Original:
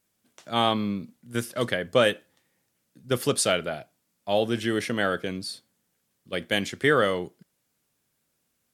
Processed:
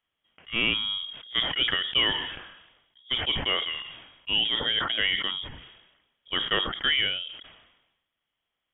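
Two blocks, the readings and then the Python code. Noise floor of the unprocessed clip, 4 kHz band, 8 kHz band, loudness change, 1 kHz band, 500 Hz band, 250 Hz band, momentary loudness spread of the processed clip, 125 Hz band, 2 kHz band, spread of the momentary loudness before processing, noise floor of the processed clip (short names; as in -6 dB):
-75 dBFS, +9.0 dB, under -40 dB, +0.5 dB, -6.5 dB, -13.5 dB, -11.0 dB, 13 LU, -9.0 dB, +1.0 dB, 13 LU, -84 dBFS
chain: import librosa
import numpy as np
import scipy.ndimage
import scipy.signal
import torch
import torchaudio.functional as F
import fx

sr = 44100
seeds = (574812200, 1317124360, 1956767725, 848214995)

y = fx.highpass(x, sr, hz=220.0, slope=6)
y = fx.rider(y, sr, range_db=3, speed_s=0.5)
y = 10.0 ** (-11.0 / 20.0) * np.tanh(y / 10.0 ** (-11.0 / 20.0))
y = fx.freq_invert(y, sr, carrier_hz=3500)
y = fx.sustainer(y, sr, db_per_s=57.0)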